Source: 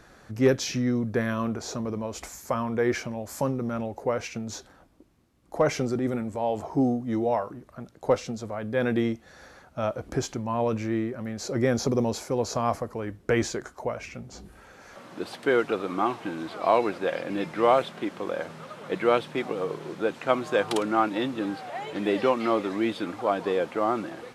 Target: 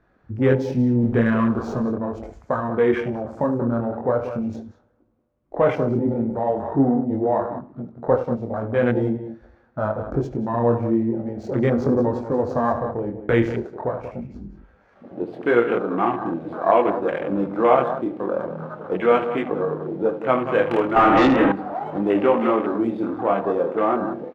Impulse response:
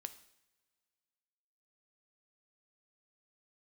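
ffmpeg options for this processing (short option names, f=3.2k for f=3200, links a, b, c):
-filter_complex "[0:a]asettb=1/sr,asplit=3[a][b][c];[a]atrim=end=0.994[d];[b]atrim=start=0.99:end=1.83,asetpts=PTS-STARTPTS,afade=t=in:d=0.004:c=qsin,afade=t=out:st=0.836:d=0.004:c=qsin,aeval=exprs='val(0)+0.5*0.0224*sgn(val(0))':c=same[e];[c]atrim=start=1.826[f];[d][e]acrossfade=d=0.004:c1=hsin:c2=qsin[g];[g][f]acrossfade=d=0.004:c1=qsin:c2=hsin,flanger=delay=19.5:depth=6.5:speed=0.41,asplit=2[h][i];[i]acompressor=threshold=-37dB:ratio=6,volume=-2dB[j];[h][j]amix=inputs=2:normalize=0,aecho=1:1:75.8|186.6:0.282|0.316,adynamicsmooth=sensitivity=7:basefreq=2.1k,asettb=1/sr,asplit=3[k][l][m];[k]atrim=end=20.964[n];[l]atrim=start=20.96:end=21.52,asetpts=PTS-STARTPTS,afade=t=in:d=0.004:c=qsin,afade=t=out:st=0.556:d=0.004:c=qsin,asplit=2[o][p];[p]highpass=f=720:p=1,volume=28dB,asoftclip=type=tanh:threshold=-12.5dB[q];[o][q]amix=inputs=2:normalize=0,lowpass=f=1.5k:p=1,volume=-6dB[r];[m]atrim=start=21.516[s];[n][r]acrossfade=d=0.004:c1=hsin:c2=qsin[t];[t][s]acrossfade=d=0.004:c1=qsin:c2=hsin,afwtdn=0.0178,asplit=2[u][v];[1:a]atrim=start_sample=2205,highshelf=f=4.7k:g=-11.5[w];[v][w]afir=irnorm=-1:irlink=0,volume=4.5dB[x];[u][x]amix=inputs=2:normalize=0"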